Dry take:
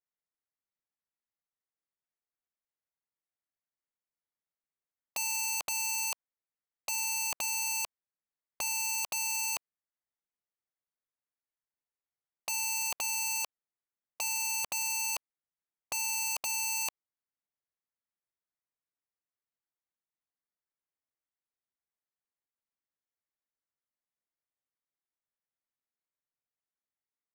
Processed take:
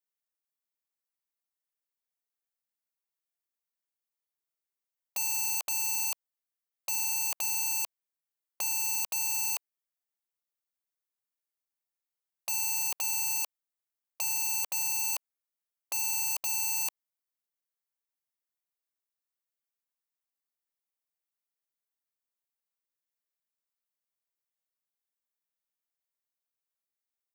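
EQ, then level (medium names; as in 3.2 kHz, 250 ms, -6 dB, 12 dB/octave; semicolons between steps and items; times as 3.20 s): tone controls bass -12 dB, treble +2 dB; treble shelf 12 kHz +9.5 dB; -3.0 dB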